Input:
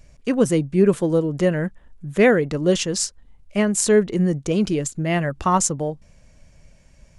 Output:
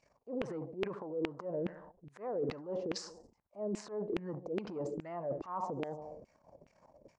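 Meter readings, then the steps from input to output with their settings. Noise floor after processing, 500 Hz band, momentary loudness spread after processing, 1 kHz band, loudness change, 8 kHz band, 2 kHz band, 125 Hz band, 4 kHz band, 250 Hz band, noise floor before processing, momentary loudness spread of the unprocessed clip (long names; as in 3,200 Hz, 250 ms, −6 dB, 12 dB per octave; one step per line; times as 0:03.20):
−75 dBFS, −17.5 dB, 12 LU, −16.5 dB, −19.0 dB, −30.5 dB, −24.0 dB, −23.0 dB, −19.5 dB, −20.5 dB, −53 dBFS, 11 LU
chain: flat-topped bell 2,200 Hz −16 dB
on a send: repeating echo 72 ms, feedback 50%, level −20.5 dB
on the sum: treble cut that deepens with the level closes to 2,800 Hz, closed at −16 dBFS
transient designer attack −11 dB, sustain +10 dB
high-shelf EQ 4,700 Hz −12 dB
auto-filter band-pass saw down 2.4 Hz 340–2,600 Hz
reversed playback
downward compressor 5 to 1, threshold −41 dBFS, peak gain reduction 19.5 dB
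reversed playback
level +5 dB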